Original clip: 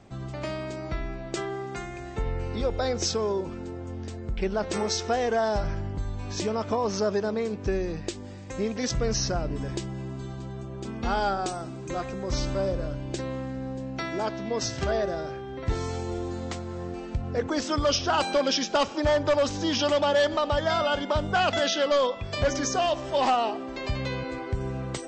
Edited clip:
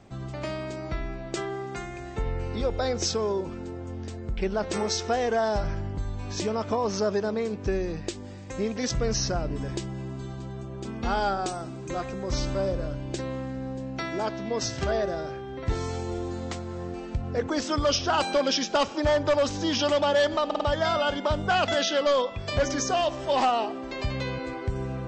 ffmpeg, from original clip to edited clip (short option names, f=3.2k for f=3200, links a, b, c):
-filter_complex "[0:a]asplit=4[a][b][c][d];[a]atrim=end=20.512[e];[b]atrim=start=20.458:end=20.512[f];[c]atrim=start=20.458:end=20.512[g];[d]atrim=start=20.458[h];[e][f]acrossfade=d=0.004:c1=hsin:c2=hsin[i];[i][g]acrossfade=d=0.004:c1=hsin:c2=hsin[j];[j][h]acrossfade=d=0.004:c1=hsin:c2=hsin"